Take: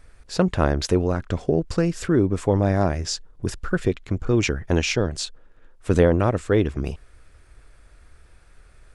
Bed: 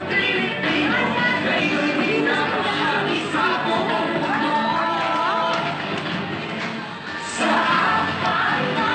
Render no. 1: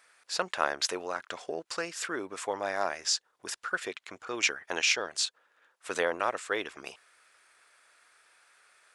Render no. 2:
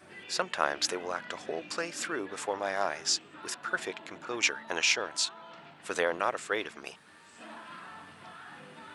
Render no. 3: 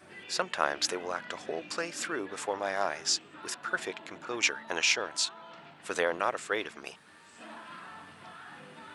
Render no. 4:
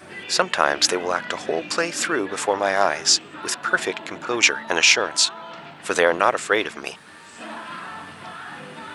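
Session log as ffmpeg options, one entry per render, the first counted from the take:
ffmpeg -i in.wav -af "highpass=960" out.wav
ffmpeg -i in.wav -i bed.wav -filter_complex "[1:a]volume=-28dB[link_01];[0:a][link_01]amix=inputs=2:normalize=0" out.wav
ffmpeg -i in.wav -af anull out.wav
ffmpeg -i in.wav -af "volume=11.5dB,alimiter=limit=-2dB:level=0:latency=1" out.wav

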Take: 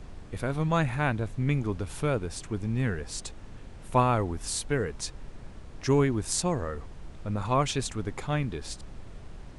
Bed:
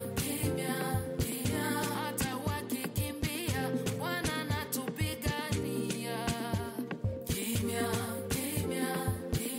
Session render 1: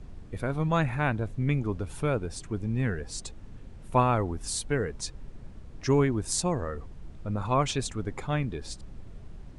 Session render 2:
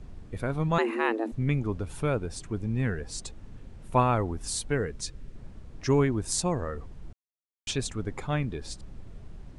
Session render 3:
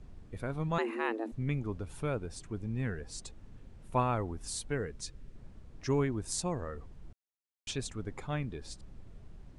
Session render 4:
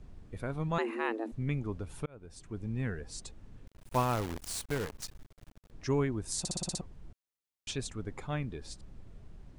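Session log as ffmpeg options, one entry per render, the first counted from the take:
ffmpeg -i in.wav -af "afftdn=noise_reduction=7:noise_floor=-45" out.wav
ffmpeg -i in.wav -filter_complex "[0:a]asettb=1/sr,asplit=3[link_01][link_02][link_03];[link_01]atrim=end=0.784[link_04];[link_02]atrim=start=0.78:end=1.32,asetpts=PTS-STARTPTS,afade=type=in:duration=0.004:curve=qsin,afade=type=out:start_time=0.536:duration=0.004:curve=qsin,afreqshift=220[link_05];[link_03]atrim=start=1.316[link_06];[link_04][link_05]acrossfade=duration=0.004:curve1=hsin:curve2=qsin[link_07];[link_07][link_06]acrossfade=duration=0.004:curve1=qsin:curve2=hsin,asettb=1/sr,asplit=3[link_08][link_09][link_10];[link_08]atrim=end=4.864[link_11];[link_09]atrim=start=4.86:end=5.36,asetpts=PTS-STARTPTS,afade=type=in:duration=0.004:curve=qsin,afade=type=out:start_time=0.496:duration=0.004:curve=qsin,equalizer=frequency=850:width_type=o:width=0.87:gain=-7.5[link_12];[link_10]atrim=start=5.356[link_13];[link_11][link_12]acrossfade=duration=0.004:curve1=hsin:curve2=qsin[link_14];[link_14][link_13]acrossfade=duration=0.004:curve1=qsin:curve2=hsin,asplit=3[link_15][link_16][link_17];[link_15]atrim=end=7.13,asetpts=PTS-STARTPTS,afade=type=out:start_time=7.126:duration=0.004:curve=hsin[link_18];[link_16]atrim=start=7.13:end=7.67,asetpts=PTS-STARTPTS,volume=0[link_19];[link_17]atrim=start=7.67,asetpts=PTS-STARTPTS,afade=type=in:duration=0.004:curve=hsin[link_20];[link_18][link_19][link_20]concat=n=3:v=0:a=1" out.wav
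ffmpeg -i in.wav -af "volume=-6.5dB" out.wav
ffmpeg -i in.wav -filter_complex "[0:a]asettb=1/sr,asplit=3[link_01][link_02][link_03];[link_01]atrim=end=3.674[link_04];[link_02]atrim=start=3.67:end=5.71,asetpts=PTS-STARTPTS,afade=type=in:duration=0.004:curve=qsin,afade=type=out:start_time=2.036:duration=0.004:curve=qsin,acrusher=bits=7:dc=4:mix=0:aa=0.000001[link_05];[link_03]atrim=start=5.706[link_06];[link_04][link_05]acrossfade=duration=0.004:curve1=hsin:curve2=qsin[link_07];[link_07][link_06]acrossfade=duration=0.004:curve1=qsin:curve2=hsin,asplit=9[link_08][link_09][link_10][link_11][link_12][link_13][link_14][link_15][link_16];[link_08]atrim=end=2.06,asetpts=PTS-STARTPTS,afade=type=out:start_time=2.056:duration=0.004:curve=hsin[link_17];[link_09]atrim=start=2.06:end=6.452,asetpts=PTS-STARTPTS,afade=type=in:duration=0.59[link_18];[link_10]atrim=start=6.388:end=6.452[link_19];[link_11]atrim=start=6.388:end=6.452[link_20];[link_12]atrim=start=6.388:end=6.452[link_21];[link_13]atrim=start=6.388:end=6.452[link_22];[link_14]atrim=start=6.388:end=6.452[link_23];[link_15]atrim=start=6.388:end=6.452[link_24];[link_16]atrim=start=6.808[link_25];[link_17][link_18]concat=n=2:v=0:a=1[link_26];[link_26][link_19]acrossfade=duration=0.004:curve1=hsin:curve2=hsin[link_27];[link_27][link_20]acrossfade=duration=0.004:curve1=hsin:curve2=hsin[link_28];[link_28][link_21]acrossfade=duration=0.004:curve1=hsin:curve2=hsin[link_29];[link_29][link_22]acrossfade=duration=0.004:curve1=hsin:curve2=hsin[link_30];[link_30][link_23]acrossfade=duration=0.004:curve1=hsin:curve2=hsin[link_31];[link_31][link_24]acrossfade=duration=0.004:curve1=hsin:curve2=hsin[link_32];[link_32][link_25]acrossfade=duration=0.004:curve1=hsin:curve2=hsin" out.wav

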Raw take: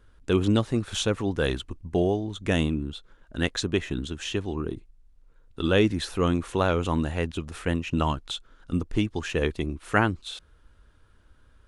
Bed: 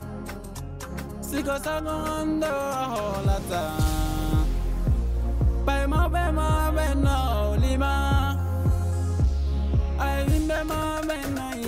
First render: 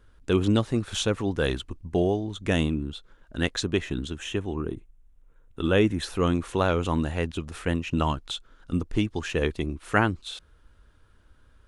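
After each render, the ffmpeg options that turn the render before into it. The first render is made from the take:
ffmpeg -i in.wav -filter_complex "[0:a]asettb=1/sr,asplit=3[link_01][link_02][link_03];[link_01]atrim=end=4.184[link_04];[link_02]atrim=start=4.18:end=6.03,asetpts=PTS-STARTPTS,afade=type=in:duration=0.004:curve=qsin,afade=type=out:start_time=1.846:duration=0.004:curve=qsin,equalizer=frequency=4600:width_type=o:width=0.44:gain=-14[link_05];[link_03]atrim=start=6.026[link_06];[link_04][link_05]acrossfade=duration=0.004:curve1=hsin:curve2=qsin[link_07];[link_07][link_06]acrossfade=duration=0.004:curve1=qsin:curve2=hsin" out.wav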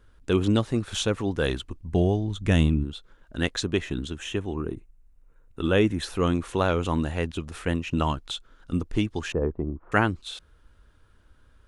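ffmpeg -i in.wav -filter_complex "[0:a]asplit=3[link_01][link_02][link_03];[link_01]afade=type=out:start_time=1.87:duration=0.02[link_04];[link_02]asubboost=boost=3:cutoff=230,afade=type=in:start_time=1.87:duration=0.02,afade=type=out:start_time=2.83:duration=0.02[link_05];[link_03]afade=type=in:start_time=2.83:duration=0.02[link_06];[link_04][link_05][link_06]amix=inputs=3:normalize=0,asettb=1/sr,asplit=3[link_07][link_08][link_09];[link_07]atrim=end=4.544[link_10];[link_08]atrim=start=4.54:end=5.62,asetpts=PTS-STARTPTS,afade=type=in:duration=0.004:curve=qsin,afade=type=out:start_time=1.076:duration=0.004:curve=qsin,bandreject=frequency=3300:width=6[link_11];[link_09]atrim=start=5.616[link_12];[link_10][link_11]acrossfade=duration=0.004:curve1=hsin:curve2=qsin[link_13];[link_13][link_12]acrossfade=duration=0.004:curve1=qsin:curve2=hsin,asettb=1/sr,asplit=3[link_14][link_15][link_16];[link_14]atrim=end=9.324[link_17];[link_15]atrim=start=9.32:end=9.92,asetpts=PTS-STARTPTS,afade=type=in:duration=0.004:curve=qsin,afade=type=out:start_time=0.596:duration=0.004:curve=qsin,lowpass=frequency=1100:width=0.5412,lowpass=frequency=1100:width=1.3066[link_18];[link_16]atrim=start=9.916[link_19];[link_17][link_18]acrossfade=duration=0.004:curve1=hsin:curve2=qsin[link_20];[link_20][link_19]acrossfade=duration=0.004:curve1=qsin:curve2=hsin" out.wav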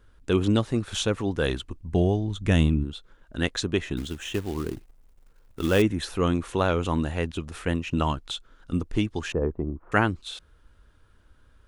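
ffmpeg -i in.wav -filter_complex "[0:a]asettb=1/sr,asplit=3[link_01][link_02][link_03];[link_01]atrim=end=3.974[link_04];[link_02]atrim=start=3.97:end=5.82,asetpts=PTS-STARTPTS,afade=type=in:duration=0.004:curve=qsin,afade=type=out:start_time=1.846:duration=0.004:curve=qsin,acrusher=bits=4:mode=log:mix=0:aa=0.000001[link_05];[link_03]atrim=start=5.816[link_06];[link_04][link_05]acrossfade=duration=0.004:curve1=hsin:curve2=qsin[link_07];[link_07][link_06]acrossfade=duration=0.004:curve1=qsin:curve2=hsin" out.wav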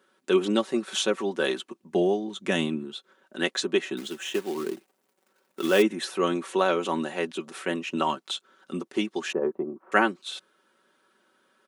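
ffmpeg -i in.wav -af "highpass=frequency=250:width=0.5412,highpass=frequency=250:width=1.3066,aecho=1:1:5.3:0.65" out.wav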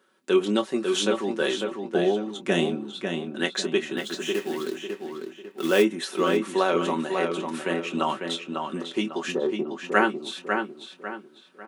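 ffmpeg -i in.wav -filter_complex "[0:a]asplit=2[link_01][link_02];[link_02]adelay=24,volume=-10.5dB[link_03];[link_01][link_03]amix=inputs=2:normalize=0,asplit=2[link_04][link_05];[link_05]adelay=548,lowpass=frequency=4100:poles=1,volume=-5dB,asplit=2[link_06][link_07];[link_07]adelay=548,lowpass=frequency=4100:poles=1,volume=0.37,asplit=2[link_08][link_09];[link_09]adelay=548,lowpass=frequency=4100:poles=1,volume=0.37,asplit=2[link_10][link_11];[link_11]adelay=548,lowpass=frequency=4100:poles=1,volume=0.37,asplit=2[link_12][link_13];[link_13]adelay=548,lowpass=frequency=4100:poles=1,volume=0.37[link_14];[link_04][link_06][link_08][link_10][link_12][link_14]amix=inputs=6:normalize=0" out.wav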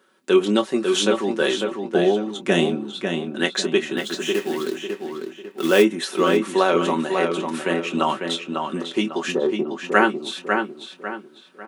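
ffmpeg -i in.wav -af "volume=4.5dB,alimiter=limit=-1dB:level=0:latency=1" out.wav

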